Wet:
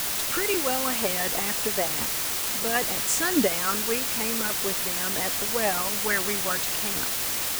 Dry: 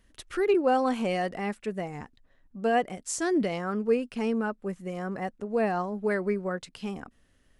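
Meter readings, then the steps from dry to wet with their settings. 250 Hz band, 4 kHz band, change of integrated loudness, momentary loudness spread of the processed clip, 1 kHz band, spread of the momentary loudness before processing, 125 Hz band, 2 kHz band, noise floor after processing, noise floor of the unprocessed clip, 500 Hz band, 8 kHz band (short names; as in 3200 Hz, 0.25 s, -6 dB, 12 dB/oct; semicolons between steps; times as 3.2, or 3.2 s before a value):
-2.5 dB, +16.5 dB, +5.0 dB, 2 LU, 0.0 dB, 12 LU, -2.0 dB, +7.5 dB, -28 dBFS, -65 dBFS, -2.5 dB, +17.0 dB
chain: harmonic-percussive split harmonic -14 dB; requantised 6-bit, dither triangular; gain +8 dB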